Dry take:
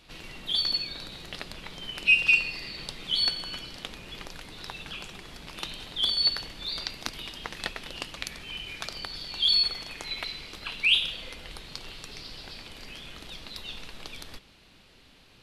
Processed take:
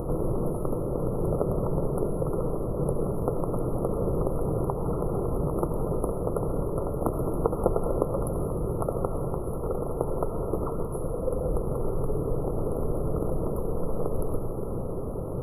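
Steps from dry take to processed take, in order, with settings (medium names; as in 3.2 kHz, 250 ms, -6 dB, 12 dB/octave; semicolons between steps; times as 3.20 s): graphic EQ 125/250/500/1000/2000/4000/8000 Hz +6/-5/+7/+9/-4/-4/+6 dB; reverberation RT60 2.4 s, pre-delay 58 ms, DRR 5.5 dB; upward compressor, threshold -31 dBFS; brick-wall FIR band-stop 1.4–9.9 kHz; resonant low shelf 620 Hz +11.5 dB, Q 1.5; trim +2 dB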